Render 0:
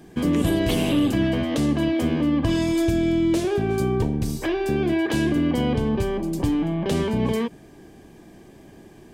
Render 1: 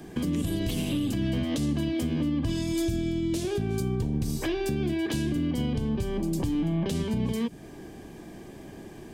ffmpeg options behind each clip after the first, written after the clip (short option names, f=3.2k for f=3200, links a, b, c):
-filter_complex "[0:a]acrossover=split=270|3000[a][b][c];[b]acompressor=threshold=-35dB:ratio=5[d];[a][d][c]amix=inputs=3:normalize=0,alimiter=limit=-22.5dB:level=0:latency=1:release=228,volume=3dB"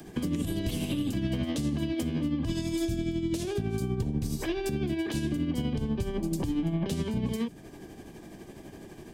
-filter_complex "[0:a]tremolo=f=12:d=0.48,acrossover=split=300|830|2700[a][b][c][d];[d]acompressor=mode=upward:threshold=-57dB:ratio=2.5[e];[a][b][c][e]amix=inputs=4:normalize=0"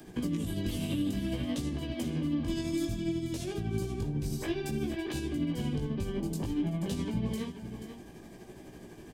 -af "flanger=delay=16:depth=5.3:speed=0.58,aecho=1:1:483:0.316"